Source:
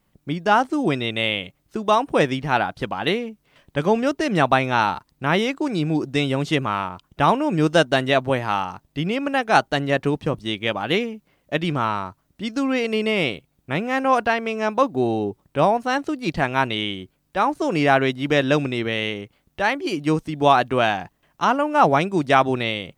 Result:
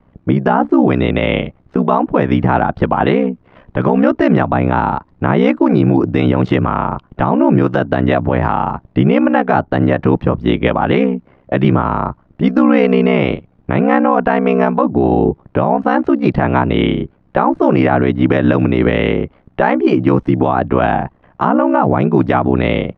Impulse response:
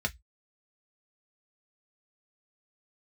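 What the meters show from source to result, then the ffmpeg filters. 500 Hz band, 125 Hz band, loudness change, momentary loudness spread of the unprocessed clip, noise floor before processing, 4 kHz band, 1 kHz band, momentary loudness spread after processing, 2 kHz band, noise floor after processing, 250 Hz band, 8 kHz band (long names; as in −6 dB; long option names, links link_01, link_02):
+7.0 dB, +11.0 dB, +7.0 dB, 10 LU, −68 dBFS, −3.5 dB, +4.5 dB, 7 LU, +1.5 dB, −53 dBFS, +11.0 dB, below −15 dB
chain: -filter_complex "[0:a]lowpass=1300,acrossover=split=290|750[link_01][link_02][link_03];[link_01]acompressor=threshold=-25dB:ratio=4[link_04];[link_02]acompressor=threshold=-31dB:ratio=4[link_05];[link_03]acompressor=threshold=-29dB:ratio=4[link_06];[link_04][link_05][link_06]amix=inputs=3:normalize=0,aeval=exprs='val(0)*sin(2*PI*32*n/s)':channel_layout=same,alimiter=level_in=20dB:limit=-1dB:release=50:level=0:latency=1,volume=-1dB"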